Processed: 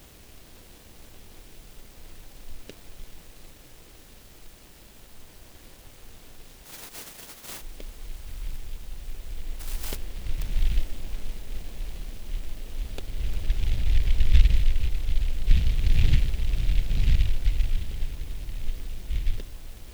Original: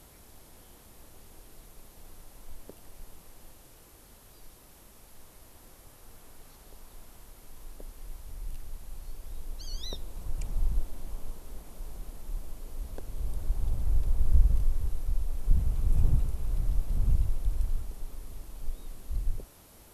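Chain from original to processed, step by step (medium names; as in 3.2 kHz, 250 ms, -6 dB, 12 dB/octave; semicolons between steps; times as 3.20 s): 6.64–7.60 s: spectral contrast reduction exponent 0.18; echo that smears into a reverb 885 ms, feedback 56%, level -14.5 dB; delay time shaken by noise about 2.7 kHz, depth 0.21 ms; trim +4.5 dB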